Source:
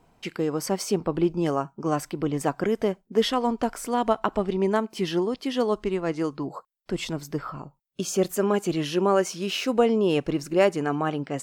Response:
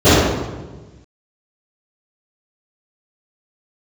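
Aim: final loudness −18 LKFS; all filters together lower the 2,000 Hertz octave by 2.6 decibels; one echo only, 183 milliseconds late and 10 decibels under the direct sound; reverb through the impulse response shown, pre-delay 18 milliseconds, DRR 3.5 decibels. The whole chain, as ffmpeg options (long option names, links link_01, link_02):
-filter_complex "[0:a]equalizer=frequency=2000:width_type=o:gain=-3.5,aecho=1:1:183:0.316,asplit=2[link_01][link_02];[1:a]atrim=start_sample=2205,adelay=18[link_03];[link_02][link_03]afir=irnorm=-1:irlink=0,volume=-36dB[link_04];[link_01][link_04]amix=inputs=2:normalize=0,volume=3dB"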